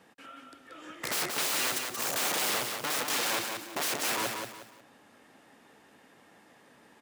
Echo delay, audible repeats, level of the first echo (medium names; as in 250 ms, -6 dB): 180 ms, 3, -5.0 dB